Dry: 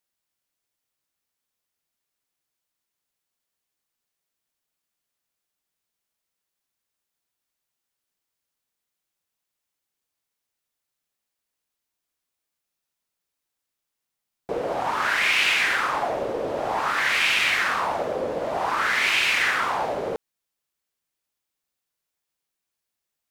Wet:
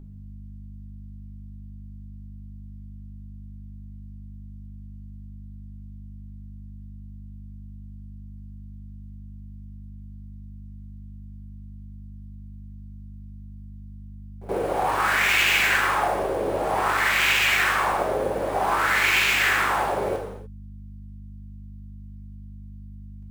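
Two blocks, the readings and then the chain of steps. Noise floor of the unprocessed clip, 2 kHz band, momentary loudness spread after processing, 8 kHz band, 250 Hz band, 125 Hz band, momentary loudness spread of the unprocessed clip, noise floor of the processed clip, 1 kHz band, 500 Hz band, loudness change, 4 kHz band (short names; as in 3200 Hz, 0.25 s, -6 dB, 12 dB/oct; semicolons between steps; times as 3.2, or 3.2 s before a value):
-84 dBFS, +1.0 dB, 9 LU, +3.0 dB, +3.5 dB, +12.0 dB, 9 LU, -40 dBFS, +2.0 dB, +1.5 dB, +1.0 dB, 0.0 dB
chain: in parallel at -4.5 dB: sample-rate reducer 9800 Hz, jitter 20%; on the sum: hum 50 Hz, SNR 10 dB; reverse echo 76 ms -19.5 dB; non-linear reverb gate 0.32 s falling, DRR 0 dB; gain -5 dB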